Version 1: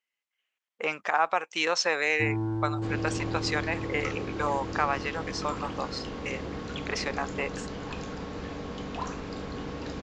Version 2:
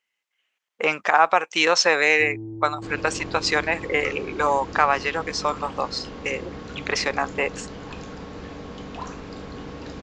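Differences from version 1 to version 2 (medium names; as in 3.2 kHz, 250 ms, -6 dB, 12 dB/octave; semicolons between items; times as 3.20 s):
speech +8.0 dB; first sound: add four-pole ladder low-pass 520 Hz, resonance 35%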